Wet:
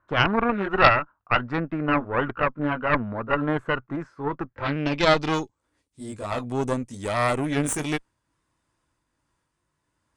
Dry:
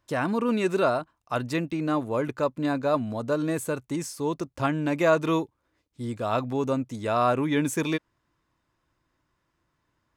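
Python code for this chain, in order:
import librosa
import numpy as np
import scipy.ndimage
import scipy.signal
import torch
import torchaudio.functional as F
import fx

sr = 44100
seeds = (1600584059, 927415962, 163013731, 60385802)

y = fx.pitch_ramps(x, sr, semitones=-1.0, every_ms=1190)
y = fx.filter_sweep_lowpass(y, sr, from_hz=1400.0, to_hz=9100.0, start_s=4.4, end_s=5.67, q=4.4)
y = fx.cheby_harmonics(y, sr, harmonics=(4,), levels_db=(-7,), full_scale_db=-5.0)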